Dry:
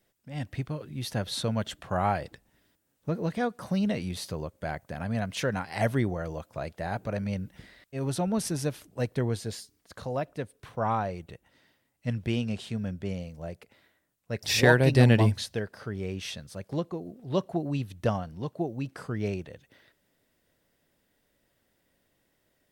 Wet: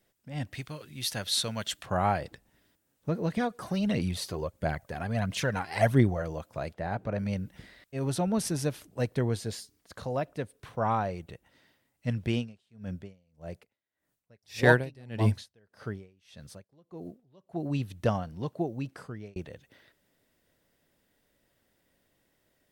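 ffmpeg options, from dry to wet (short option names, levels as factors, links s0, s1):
-filter_complex "[0:a]asettb=1/sr,asplit=3[s0][s1][s2];[s0]atrim=end=0.534[s3];[s1]atrim=start=0.53:end=1.86,asetpts=PTS-STARTPTS,afade=t=in:d=0.004:c=qsin,afade=t=out:st=1.326:d=0.004:c=qsin,tiltshelf=f=1400:g=-7.5[s4];[s2]atrim=start=1.856[s5];[s3][s4]acrossfade=d=0.004:c1=hsin:c2=qsin[s6];[s6][s5]acrossfade=d=0.004:c1=qsin:c2=hsin,asplit=3[s7][s8][s9];[s7]afade=t=out:st=3.35:d=0.02[s10];[s8]aphaser=in_gain=1:out_gain=1:delay=3:decay=0.5:speed=1.5:type=triangular,afade=t=in:st=3.35:d=0.02,afade=t=out:st=6.21:d=0.02[s11];[s9]afade=t=in:st=6.21:d=0.02[s12];[s10][s11][s12]amix=inputs=3:normalize=0,asettb=1/sr,asplit=3[s13][s14][s15];[s13]atrim=end=6.744[s16];[s14]atrim=start=6.74:end=7.19,asetpts=PTS-STARTPTS,afade=t=in:d=0.004:c=qsin,afade=t=out:st=0.446:d=0.004:c=qsin,lowpass=f=2300:p=1[s17];[s15]atrim=start=7.186[s18];[s16][s17]acrossfade=d=0.004:c1=hsin:c2=qsin[s19];[s19][s18]acrossfade=d=0.004:c1=qsin:c2=hsin,asplit=3[s20][s21][s22];[s20]afade=t=out:st=12.31:d=0.02[s23];[s21]aeval=exprs='val(0)*pow(10,-32*(0.5-0.5*cos(2*PI*1.7*n/s))/20)':c=same,afade=t=in:st=12.31:d=0.02,afade=t=out:st=17.69:d=0.02[s24];[s22]afade=t=in:st=17.69:d=0.02[s25];[s23][s24][s25]amix=inputs=3:normalize=0,asplit=2[s26][s27];[s26]atrim=end=19.36,asetpts=PTS-STARTPTS,afade=t=out:st=18.51:d=0.85:c=qsin[s28];[s27]atrim=start=19.36,asetpts=PTS-STARTPTS,afade=t=in:d=0.004:c=hsin[s29];[s28][s29]concat=n=2:v=0:a=1"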